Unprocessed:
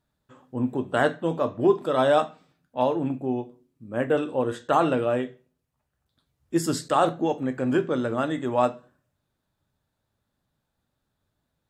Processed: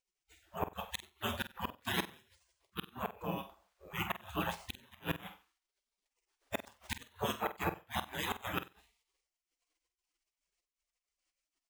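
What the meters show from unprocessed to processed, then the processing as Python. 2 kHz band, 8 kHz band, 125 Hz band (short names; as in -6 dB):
-7.5 dB, -8.5 dB, -12.0 dB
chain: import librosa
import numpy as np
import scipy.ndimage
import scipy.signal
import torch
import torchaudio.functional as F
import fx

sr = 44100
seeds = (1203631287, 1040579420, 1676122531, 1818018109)

y = scipy.signal.sosfilt(scipy.signal.butter(4, 71.0, 'highpass', fs=sr, output='sos'), x)
y = fx.hum_notches(y, sr, base_hz=60, count=2)
y = fx.spec_gate(y, sr, threshold_db=-30, keep='weak')
y = scipy.signal.sosfilt(scipy.signal.butter(2, 7900.0, 'lowpass', fs=sr, output='sos'), y)
y = fx.tilt_shelf(y, sr, db=8.5, hz=880.0)
y = fx.gate_flip(y, sr, shuts_db=-38.0, range_db=-32)
y = fx.room_flutter(y, sr, wall_m=8.1, rt60_s=0.24)
y = np.repeat(y[::3], 3)[:len(y)]
y = y * 10.0 ** (17.0 / 20.0)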